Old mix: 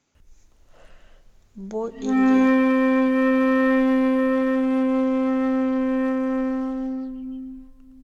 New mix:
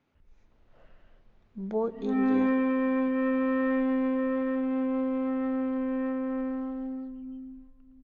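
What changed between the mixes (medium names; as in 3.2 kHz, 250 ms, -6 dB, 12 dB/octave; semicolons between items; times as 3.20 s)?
background -7.0 dB; master: add distance through air 320 m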